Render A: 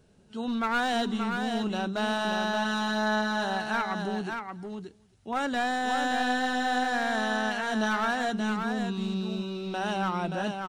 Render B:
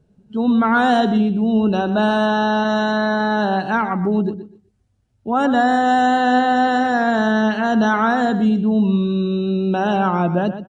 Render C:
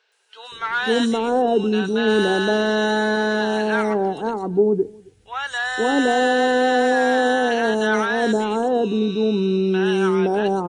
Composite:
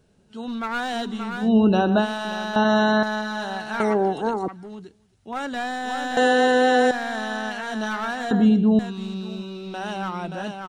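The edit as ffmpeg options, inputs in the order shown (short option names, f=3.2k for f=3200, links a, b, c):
-filter_complex "[1:a]asplit=3[a][b][c];[2:a]asplit=2[d][e];[0:a]asplit=6[f][g][h][i][j][k];[f]atrim=end=1.5[l];[a]atrim=start=1.4:end=2.07[m];[g]atrim=start=1.97:end=2.562[n];[b]atrim=start=2.558:end=3.032[o];[h]atrim=start=3.028:end=3.802[p];[d]atrim=start=3.798:end=4.482[q];[i]atrim=start=4.478:end=6.172[r];[e]atrim=start=6.168:end=6.912[s];[j]atrim=start=6.908:end=8.312[t];[c]atrim=start=8.308:end=8.792[u];[k]atrim=start=8.788[v];[l][m]acrossfade=d=0.1:c1=tri:c2=tri[w];[w][n]acrossfade=d=0.1:c1=tri:c2=tri[x];[x][o]acrossfade=d=0.004:c1=hsin:c2=hsin[y];[y][p]acrossfade=d=0.004:c1=hsin:c2=hsin[z];[z][q]acrossfade=d=0.004:c1=hsin:c2=hsin[aa];[aa][r]acrossfade=d=0.004:c1=hsin:c2=hsin[ab];[ab][s]acrossfade=d=0.004:c1=hsin:c2=hsin[ac];[ac][t]acrossfade=d=0.004:c1=hsin:c2=hsin[ad];[ad][u]acrossfade=d=0.004:c1=hsin:c2=hsin[ae];[ae][v]acrossfade=d=0.004:c1=hsin:c2=hsin"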